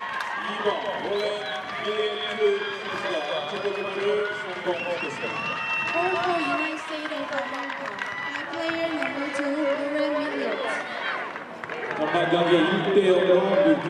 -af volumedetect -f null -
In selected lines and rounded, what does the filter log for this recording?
mean_volume: -25.5 dB
max_volume: -9.0 dB